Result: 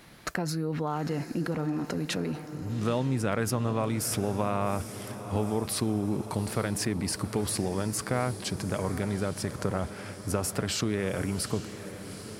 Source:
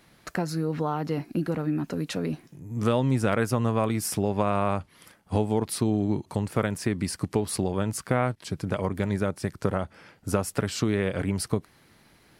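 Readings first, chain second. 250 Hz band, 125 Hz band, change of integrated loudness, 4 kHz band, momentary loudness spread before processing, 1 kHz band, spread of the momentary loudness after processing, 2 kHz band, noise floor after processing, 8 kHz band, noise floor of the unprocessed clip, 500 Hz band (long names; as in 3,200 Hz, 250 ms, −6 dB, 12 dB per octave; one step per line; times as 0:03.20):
−3.0 dB, −3.0 dB, −3.0 dB, +2.0 dB, 6 LU, −3.0 dB, 6 LU, −2.0 dB, −42 dBFS, +1.5 dB, −59 dBFS, −3.5 dB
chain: in parallel at 0 dB: compressor whose output falls as the input rises −36 dBFS, ratio −1
on the sum: feedback delay with all-pass diffusion 814 ms, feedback 60%, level −12 dB
level −5.5 dB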